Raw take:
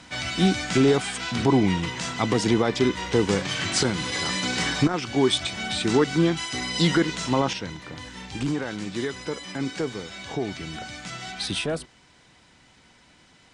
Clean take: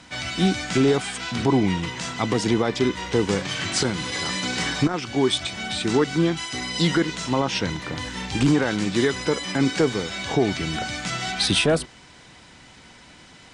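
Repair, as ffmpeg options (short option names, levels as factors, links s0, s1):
-af "asetnsamples=n=441:p=0,asendcmd='7.53 volume volume 8dB',volume=1"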